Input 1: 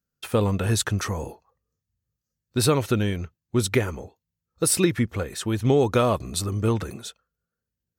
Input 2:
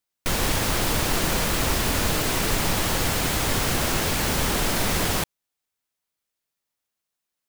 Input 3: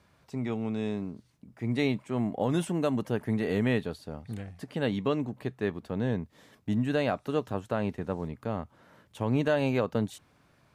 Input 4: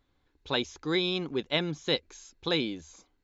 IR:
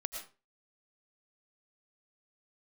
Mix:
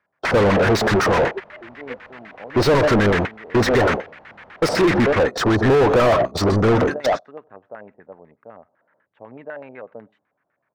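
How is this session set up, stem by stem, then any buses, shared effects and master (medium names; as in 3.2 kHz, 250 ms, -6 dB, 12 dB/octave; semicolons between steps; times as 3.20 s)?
-4.5 dB, 0.00 s, send -12 dB, no echo send, resonant high shelf 3.6 kHz +13.5 dB, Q 3
-5.5 dB, 0.00 s, no send, no echo send, amplifier tone stack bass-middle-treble 5-5-5; upward compressor, threshold -57 dBFS
-13.0 dB, 0.00 s, send -24 dB, echo send -23.5 dB, peaking EQ 1.7 kHz +3 dB
-3.5 dB, 0.00 s, send -19.5 dB, no echo send, formants replaced by sine waves; harmonic tremolo 7.3 Hz, depth 100%, crossover 730 Hz; auto duck -13 dB, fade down 0.95 s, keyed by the first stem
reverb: on, RT60 0.35 s, pre-delay 70 ms
echo: delay 82 ms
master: gate -31 dBFS, range -25 dB; LFO low-pass square 8 Hz 660–1900 Hz; overdrive pedal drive 37 dB, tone 1.4 kHz, clips at -7.5 dBFS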